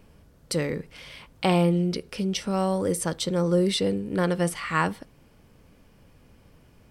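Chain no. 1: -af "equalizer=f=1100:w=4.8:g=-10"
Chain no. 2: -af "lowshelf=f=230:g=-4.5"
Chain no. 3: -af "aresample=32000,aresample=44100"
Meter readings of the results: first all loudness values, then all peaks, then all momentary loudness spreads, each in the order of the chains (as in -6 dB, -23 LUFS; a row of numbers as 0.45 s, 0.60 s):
-26.0 LUFS, -27.0 LUFS, -25.5 LUFS; -10.5 dBFS, -9.5 dBFS, -10.0 dBFS; 10 LU, 10 LU, 10 LU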